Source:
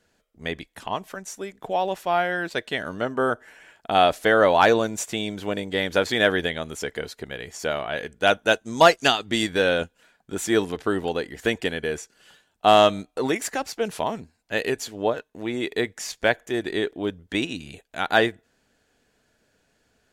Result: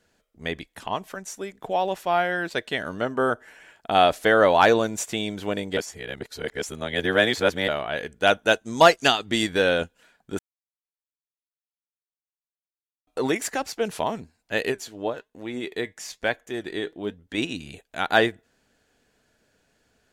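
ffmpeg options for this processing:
-filter_complex "[0:a]asplit=3[a][b][c];[a]afade=t=out:st=14.71:d=0.02[d];[b]flanger=delay=3.6:depth=2.9:regen=78:speed=1.1:shape=sinusoidal,afade=t=in:st=14.71:d=0.02,afade=t=out:st=17.37:d=0.02[e];[c]afade=t=in:st=17.37:d=0.02[f];[d][e][f]amix=inputs=3:normalize=0,asplit=5[g][h][i][j][k];[g]atrim=end=5.772[l];[h]atrim=start=5.768:end=7.682,asetpts=PTS-STARTPTS,areverse[m];[i]atrim=start=7.678:end=10.39,asetpts=PTS-STARTPTS,afade=t=out:st=2.708:d=0.004:c=hsin[n];[j]atrim=start=10.39:end=13.07,asetpts=PTS-STARTPTS,volume=0[o];[k]atrim=start=13.07,asetpts=PTS-STARTPTS,afade=t=in:d=0.004:c=hsin[p];[l][m]acrossfade=d=0.004:c1=hsin:c2=hsin[q];[n][o][p]concat=n=3:v=0:a=1[r];[q][r]acrossfade=d=0.004:c1=hsin:c2=hsin"

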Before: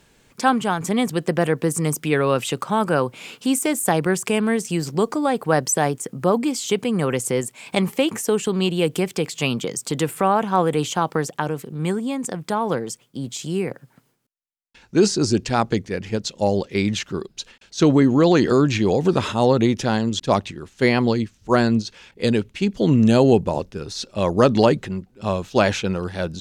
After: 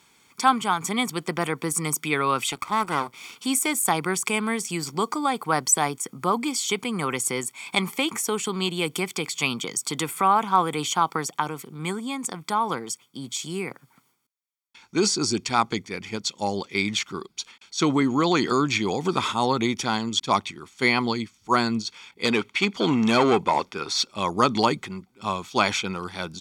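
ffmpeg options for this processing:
-filter_complex "[0:a]asettb=1/sr,asplit=3[a][b][c];[a]atrim=end=2.524[d];[b]atrim=start=2.52:end=3.36,asetpts=PTS-STARTPTS,afade=t=in:d=0.004:c=qsin,afade=t=out:st=0.836:d=0.004:c=qsin,aeval=exprs='max(val(0),0)':c=same[e];[c]atrim=start=3.356[f];[d][e]acrossfade=d=0.004:c1=hsin:c2=qsin[g];[g][f]acrossfade=d=0.004:c1=qsin:c2=hsin,asettb=1/sr,asplit=3[h][i][j];[h]atrim=end=22.254[k];[i]atrim=start=22.25:end=24.03,asetpts=PTS-STARTPTS,afade=t=in:d=0.004:c=qsin,afade=t=out:st=1.776:d=0.004:c=qsin,asplit=2[l][m];[m]highpass=f=720:p=1,volume=17dB,asoftclip=type=tanh:threshold=-3.5dB[n];[l][n]amix=inputs=2:normalize=0,lowpass=f=2.5k:p=1,volume=-6dB[o];[j]atrim=start=24.026[p];[k][o]acrossfade=d=0.004:c1=hsin:c2=qsin[q];[q][p]acrossfade=d=0.004:c1=qsin:c2=hsin,highpass=f=610:p=1,aecho=1:1:0.9:0.62"

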